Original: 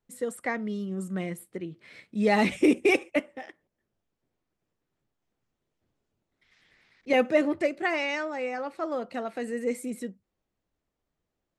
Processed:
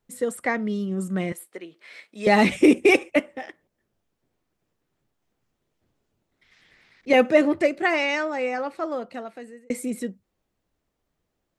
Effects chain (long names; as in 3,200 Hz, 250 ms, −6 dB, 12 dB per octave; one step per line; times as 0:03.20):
0:01.32–0:02.27: high-pass filter 550 Hz 12 dB per octave
0:08.56–0:09.70: fade out
level +5.5 dB